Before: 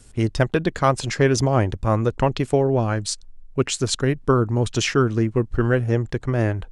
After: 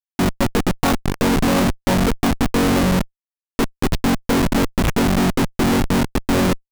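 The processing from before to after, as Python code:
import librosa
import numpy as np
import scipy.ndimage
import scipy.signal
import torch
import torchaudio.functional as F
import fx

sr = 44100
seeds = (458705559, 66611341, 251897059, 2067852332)

y = fx.chord_vocoder(x, sr, chord='major triad', root=54)
y = fx.schmitt(y, sr, flips_db=-24.0)
y = F.gain(torch.from_numpy(y), 6.0).numpy()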